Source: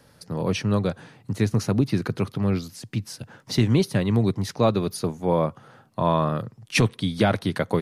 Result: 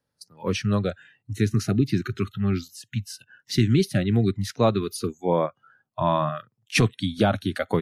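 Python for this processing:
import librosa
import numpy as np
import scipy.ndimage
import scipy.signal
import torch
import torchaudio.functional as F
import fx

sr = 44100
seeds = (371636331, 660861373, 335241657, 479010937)

y = fx.noise_reduce_blind(x, sr, reduce_db=25)
y = fx.graphic_eq_31(y, sr, hz=(2000, 5000, 8000), db=(-10, -4, -5), at=(7.06, 7.51))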